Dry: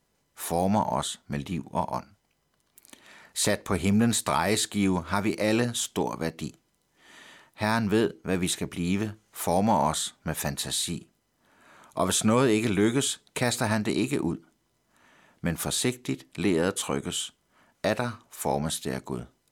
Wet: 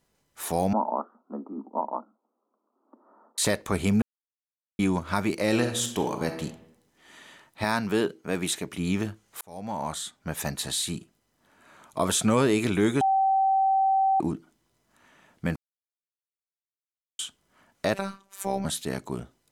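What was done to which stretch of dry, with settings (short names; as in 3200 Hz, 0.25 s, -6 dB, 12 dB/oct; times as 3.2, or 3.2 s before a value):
0.73–3.38 Chebyshev band-pass 220–1300 Hz, order 5
4.02–4.79 mute
5.49–6.42 reverb throw, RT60 0.84 s, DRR 5.5 dB
7.64–8.78 HPF 210 Hz 6 dB/oct
9.41–10.95 fade in equal-power
13.01–14.2 bleep 773 Hz -19 dBFS
15.56–17.19 mute
17.94–18.65 robotiser 195 Hz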